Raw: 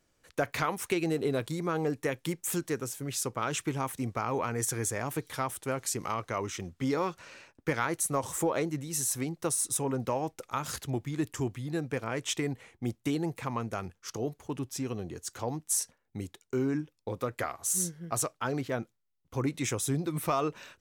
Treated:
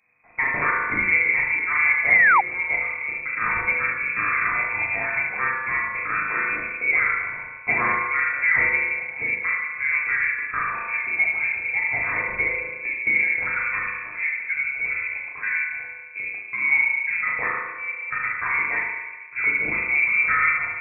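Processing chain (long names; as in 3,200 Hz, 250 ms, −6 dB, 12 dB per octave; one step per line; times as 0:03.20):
flutter between parallel walls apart 6.5 metres, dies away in 0.64 s
feedback delay network reverb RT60 1.3 s, low-frequency decay 1.55×, high-frequency decay 0.65×, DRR −2.5 dB
sound drawn into the spectrogram rise, 0:02.10–0:02.41, 310–1,800 Hz −17 dBFS
voice inversion scrambler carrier 2,500 Hz
level +2 dB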